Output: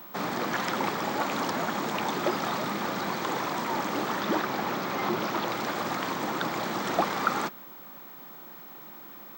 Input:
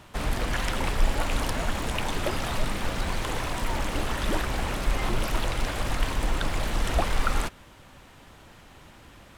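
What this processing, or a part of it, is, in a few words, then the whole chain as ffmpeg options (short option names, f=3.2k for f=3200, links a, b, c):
old television with a line whistle: -filter_complex "[0:a]asettb=1/sr,asplit=3[a][b][c];[a]atrim=end=4.204[d];[b]atrim=start=4.2:end=5.5,asetpts=PTS-STARTPTS,afade=t=in:d=0.004:c=qsin,afade=t=out:st=1.296:d=0.004:c=qsin,acrossover=split=7900[e][f];[f]acompressor=threshold=-59dB:ratio=4:attack=1:release=60[g];[e][g]amix=inputs=2:normalize=0[h];[c]atrim=start=5.496[i];[d][h]acrossfade=d=0.004:c1=hsin:c2=qsin[j];[j][i]acrossfade=d=0.004:c1=qsin:c2=hsin,highpass=f=160:w=0.5412,highpass=f=160:w=1.3066,equalizer=f=200:t=q:w=4:g=3,equalizer=f=350:t=q:w=4:g=5,equalizer=f=840:t=q:w=4:g=4,equalizer=f=1.2k:t=q:w=4:g=5,equalizer=f=2.8k:t=q:w=4:g=-6,lowpass=f=7.2k:w=0.5412,lowpass=f=7.2k:w=1.3066,aeval=exprs='val(0)+0.00631*sin(2*PI*15734*n/s)':c=same"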